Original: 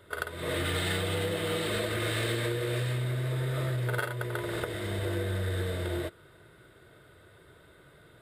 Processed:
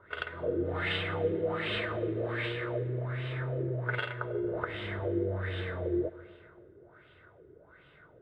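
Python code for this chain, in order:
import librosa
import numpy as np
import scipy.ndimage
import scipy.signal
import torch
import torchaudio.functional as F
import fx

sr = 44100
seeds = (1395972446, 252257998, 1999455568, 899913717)

y = fx.filter_lfo_lowpass(x, sr, shape='sine', hz=1.3, low_hz=370.0, high_hz=3000.0, q=4.0)
y = fx.rev_plate(y, sr, seeds[0], rt60_s=2.4, hf_ratio=0.65, predelay_ms=0, drr_db=15.5)
y = F.gain(torch.from_numpy(y), -5.0).numpy()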